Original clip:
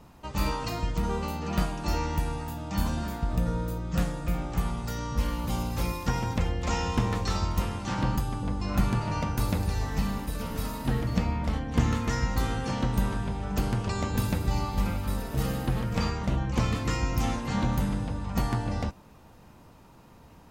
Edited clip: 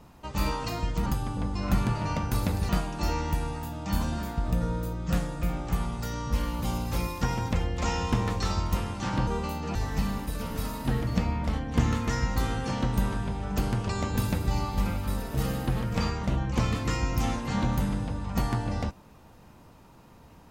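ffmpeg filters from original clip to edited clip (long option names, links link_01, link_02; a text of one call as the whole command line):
ffmpeg -i in.wav -filter_complex "[0:a]asplit=5[link_01][link_02][link_03][link_04][link_05];[link_01]atrim=end=1.062[link_06];[link_02]atrim=start=8.118:end=9.752[link_07];[link_03]atrim=start=1.538:end=8.122[link_08];[link_04]atrim=start=1.058:end=1.542[link_09];[link_05]atrim=start=9.748[link_10];[link_06][link_07]acrossfade=duration=0.004:curve1=hsin:curve2=hsin[link_11];[link_11][link_08]acrossfade=duration=0.004:curve1=hsin:curve2=hsin[link_12];[link_12][link_09]acrossfade=duration=0.004:curve1=hsin:curve2=hsin[link_13];[link_13][link_10]acrossfade=duration=0.004:curve1=hsin:curve2=hsin" out.wav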